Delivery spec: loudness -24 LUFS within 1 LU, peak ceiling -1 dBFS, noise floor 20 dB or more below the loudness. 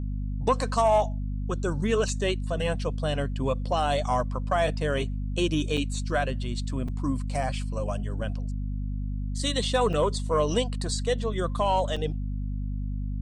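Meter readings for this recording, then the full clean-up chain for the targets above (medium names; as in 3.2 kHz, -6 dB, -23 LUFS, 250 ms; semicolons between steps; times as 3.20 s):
dropouts 5; longest dropout 4.4 ms; hum 50 Hz; highest harmonic 250 Hz; hum level -28 dBFS; loudness -28.0 LUFS; peak level -12.5 dBFS; loudness target -24.0 LUFS
-> interpolate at 5.77/6.88/7.43/9.93/11.96 s, 4.4 ms; hum notches 50/100/150/200/250 Hz; trim +4 dB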